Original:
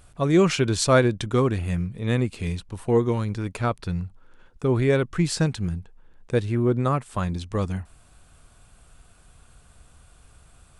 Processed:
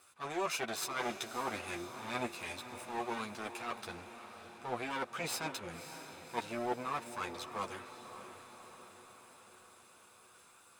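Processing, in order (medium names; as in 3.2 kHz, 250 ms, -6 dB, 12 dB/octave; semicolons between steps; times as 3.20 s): comb filter that takes the minimum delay 0.79 ms; high-pass 500 Hz 12 dB/octave; transient shaper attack -6 dB, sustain -2 dB; reverse; compression 6:1, threshold -32 dBFS, peak gain reduction 12.5 dB; reverse; chorus voices 6, 0.4 Hz, delay 11 ms, depth 3 ms; on a send: echo that smears into a reverb 576 ms, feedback 60%, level -11 dB; on the sum: trim +1.5 dB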